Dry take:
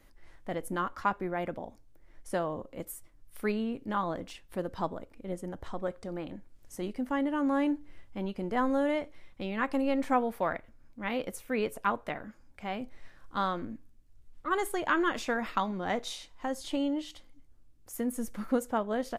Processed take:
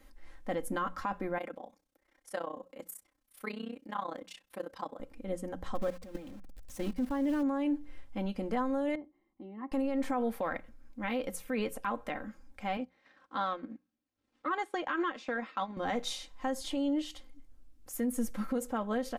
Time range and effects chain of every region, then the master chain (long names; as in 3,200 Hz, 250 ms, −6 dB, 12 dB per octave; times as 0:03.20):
0:01.38–0:05.00: high-pass filter 500 Hz 6 dB per octave + amplitude modulation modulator 31 Hz, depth 85%
0:05.75–0:07.43: converter with a step at zero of −39.5 dBFS + low-shelf EQ 160 Hz +6.5 dB + output level in coarse steps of 16 dB
0:08.95–0:09.72: resonant band-pass 380 Hz, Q 4.4 + comb filter 1 ms, depth 85%
0:12.77–0:15.77: band-pass filter 240–4,800 Hz + transient designer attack +4 dB, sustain −10 dB
whole clip: mains-hum notches 60/120/180 Hz; comb filter 3.8 ms, depth 56%; brickwall limiter −24 dBFS